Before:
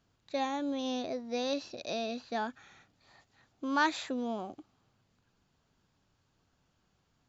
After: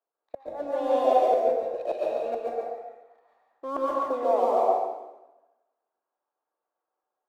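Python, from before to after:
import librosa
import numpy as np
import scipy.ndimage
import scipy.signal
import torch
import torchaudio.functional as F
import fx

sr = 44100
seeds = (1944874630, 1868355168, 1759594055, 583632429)

y = scipy.signal.sosfilt(scipy.signal.butter(2, 1400.0, 'lowpass', fs=sr, output='sos'), x)
y = fx.dereverb_blind(y, sr, rt60_s=0.87)
y = scipy.signal.sosfilt(scipy.signal.butter(4, 400.0, 'highpass', fs=sr, output='sos'), y)
y = fx.peak_eq(y, sr, hz=690.0, db=12.0, octaves=2.3)
y = fx.leveller(y, sr, passes=1)
y = fx.gate_flip(y, sr, shuts_db=-16.0, range_db=-32)
y = y + 10.0 ** (-4.0 / 20.0) * np.pad(y, (int(140 * sr / 1000.0), 0))[:len(y)]
y = fx.rev_plate(y, sr, seeds[0], rt60_s=1.4, hf_ratio=0.85, predelay_ms=110, drr_db=-4.5)
y = fx.band_widen(y, sr, depth_pct=40)
y = F.gain(torch.from_numpy(y), -1.5).numpy()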